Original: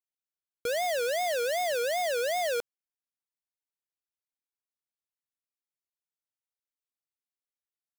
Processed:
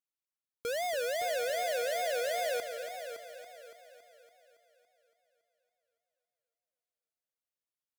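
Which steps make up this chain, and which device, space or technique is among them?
multi-head tape echo (multi-head echo 0.281 s, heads first and second, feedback 46%, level -11.5 dB; wow and flutter); gain -4.5 dB

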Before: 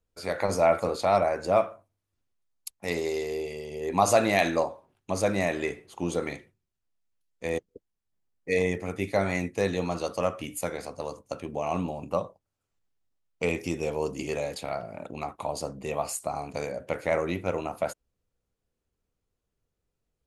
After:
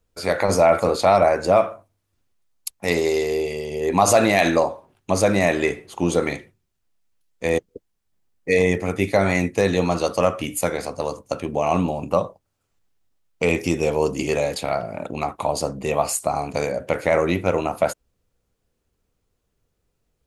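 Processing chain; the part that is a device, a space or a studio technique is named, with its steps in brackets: clipper into limiter (hard clip -11 dBFS, distortion -36 dB; limiter -15 dBFS, peak gain reduction 4 dB); gain +9 dB

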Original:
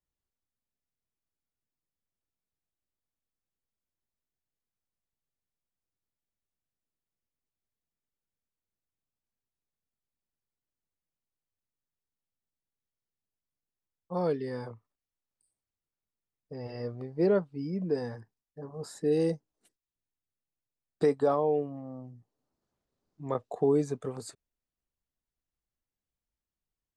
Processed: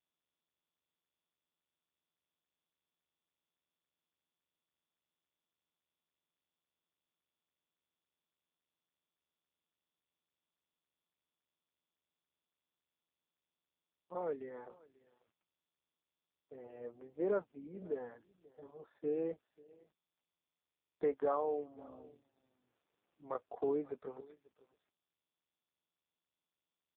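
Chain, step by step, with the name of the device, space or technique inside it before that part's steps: HPF 49 Hz 6 dB/oct; dynamic EQ 1400 Hz, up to +4 dB, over -43 dBFS, Q 0.73; satellite phone (BPF 310–3100 Hz; echo 0.539 s -22.5 dB; gain -7.5 dB; AMR-NB 5.15 kbps 8000 Hz)

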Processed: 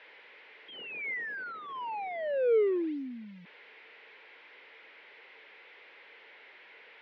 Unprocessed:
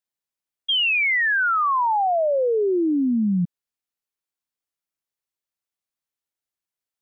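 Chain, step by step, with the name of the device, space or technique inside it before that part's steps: digital answering machine (BPF 390–3100 Hz; delta modulation 32 kbps, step -46 dBFS; speaker cabinet 430–3000 Hz, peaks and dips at 450 Hz +8 dB, 700 Hz -7 dB, 1200 Hz -9 dB, 2100 Hz +7 dB); gain -1.5 dB

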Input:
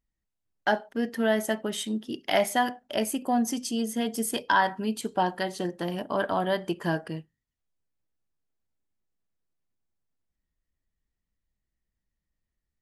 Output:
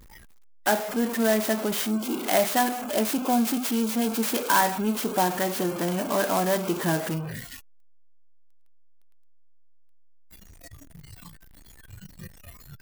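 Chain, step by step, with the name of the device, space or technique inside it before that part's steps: early CD player with a faulty converter (zero-crossing step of -26.5 dBFS; clock jitter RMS 0.063 ms); spectral noise reduction 17 dB

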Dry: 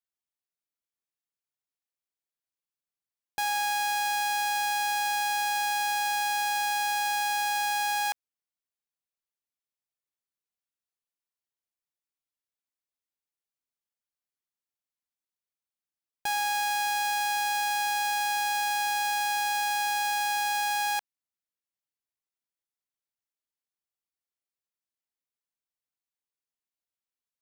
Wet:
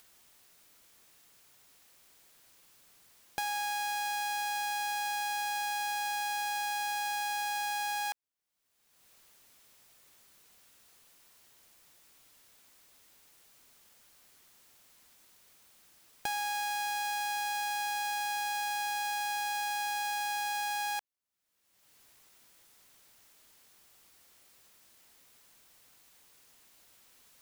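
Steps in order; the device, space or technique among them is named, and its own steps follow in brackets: upward and downward compression (upward compressor, threshold -38 dBFS; compressor, threshold -32 dBFS, peak gain reduction 6 dB)

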